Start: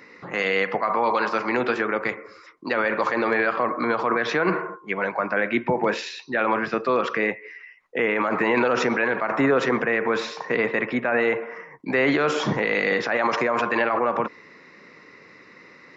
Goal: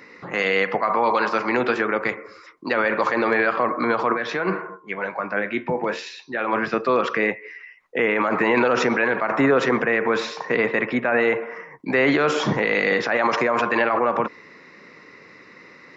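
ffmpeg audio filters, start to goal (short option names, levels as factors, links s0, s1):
-filter_complex "[0:a]asplit=3[s0][s1][s2];[s0]afade=t=out:st=4.12:d=0.02[s3];[s1]flanger=delay=9.7:depth=2.6:regen=67:speed=1.3:shape=triangular,afade=t=in:st=4.12:d=0.02,afade=t=out:st=6.52:d=0.02[s4];[s2]afade=t=in:st=6.52:d=0.02[s5];[s3][s4][s5]amix=inputs=3:normalize=0,volume=1.26"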